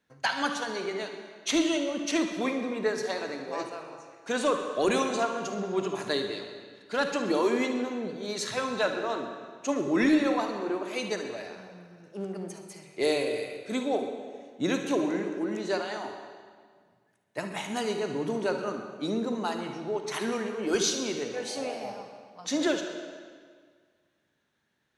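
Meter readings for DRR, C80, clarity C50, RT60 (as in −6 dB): 4.5 dB, 7.5 dB, 5.0 dB, 1.8 s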